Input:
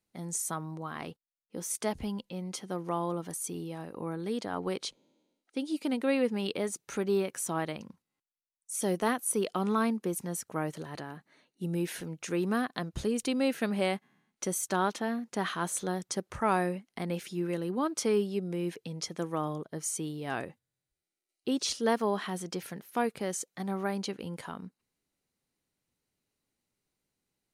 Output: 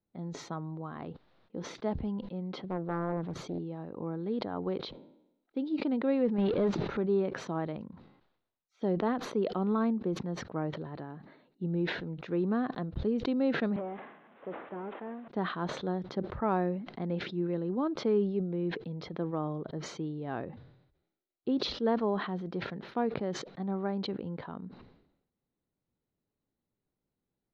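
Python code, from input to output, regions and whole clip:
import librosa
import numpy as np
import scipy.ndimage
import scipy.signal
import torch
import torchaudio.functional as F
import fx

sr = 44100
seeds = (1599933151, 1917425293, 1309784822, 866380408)

y = fx.chain(x, sr, fx.low_shelf(hz=170.0, db=9.5),
    fx.doppler_dist(depth_ms=0.57), at=(2.64, 3.59))
y = fx.chain(y, sr, fx.high_shelf(hz=11000.0, db=-11.0),
    fx.power_curve(exponent=0.5),
    fx.sustainer(db_per_s=33.0), at=(6.38, 6.97))
y = fx.chain(y, sr, fx.delta_mod(bps=16000, step_db=-45.0),
    fx.highpass(hz=420.0, slope=12), at=(13.76, 15.28))
y = scipy.signal.sosfilt(scipy.signal.ellip(4, 1.0, 60, 3900.0, 'lowpass', fs=sr, output='sos'), y)
y = fx.peak_eq(y, sr, hz=2800.0, db=-15.0, octaves=2.3)
y = fx.sustainer(y, sr, db_per_s=71.0)
y = y * librosa.db_to_amplitude(2.0)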